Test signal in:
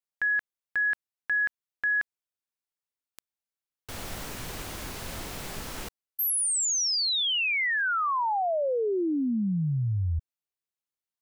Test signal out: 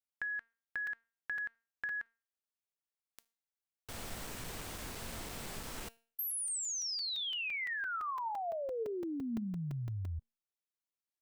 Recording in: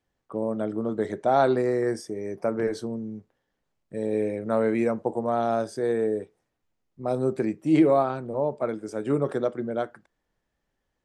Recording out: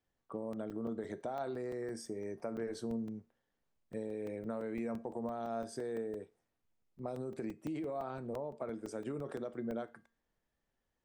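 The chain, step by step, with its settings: dynamic bell 8.2 kHz, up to +4 dB, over -59 dBFS, Q 6.7; peak limiter -19 dBFS; compression, threshold -30 dBFS; feedback comb 230 Hz, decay 0.38 s, harmonics all, mix 50%; crackling interface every 0.17 s, samples 128, zero, from 0.53 s; trim -1 dB

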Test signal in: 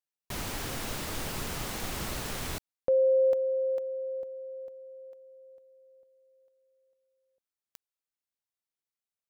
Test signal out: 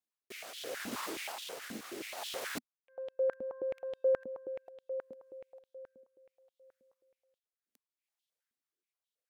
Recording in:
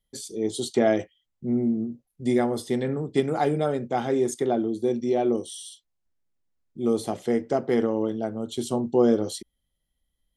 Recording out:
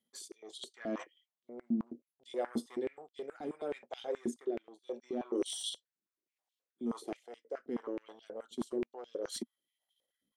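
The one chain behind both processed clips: overload inside the chain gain 12 dB; reverse; compression 8:1, threshold -37 dBFS; reverse; Chebyshev shaper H 5 -7 dB, 6 -19 dB, 8 -27 dB, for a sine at -20.5 dBFS; rotary cabinet horn 0.7 Hz; transient shaper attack -3 dB, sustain -7 dB; step-sequenced high-pass 9.4 Hz 240–3300 Hz; trim -8.5 dB

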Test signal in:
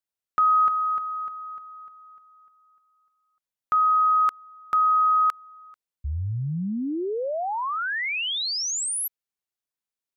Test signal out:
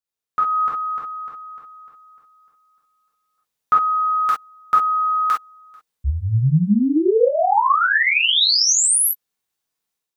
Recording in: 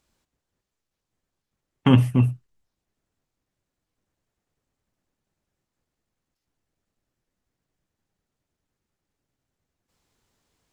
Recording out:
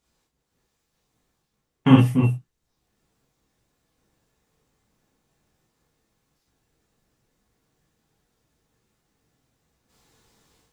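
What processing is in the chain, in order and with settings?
level rider gain up to 10 dB; gated-style reverb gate 80 ms flat, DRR -5.5 dB; trim -6 dB

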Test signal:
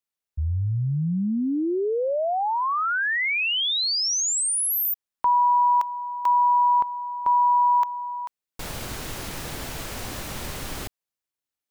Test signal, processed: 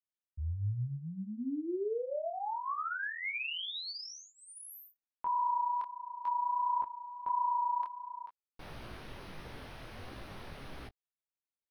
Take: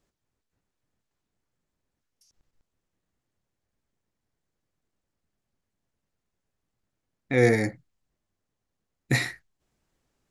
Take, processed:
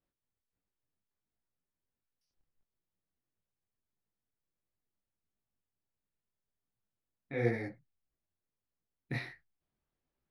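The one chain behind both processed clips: boxcar filter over 6 samples; detune thickener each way 51 cents; trim -8.5 dB

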